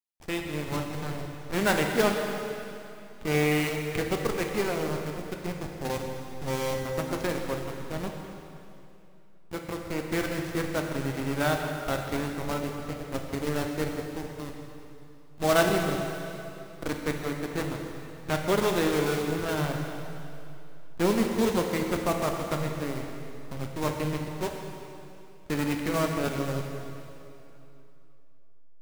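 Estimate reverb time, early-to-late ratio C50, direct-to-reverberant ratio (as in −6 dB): 2.9 s, 3.5 dB, 2.0 dB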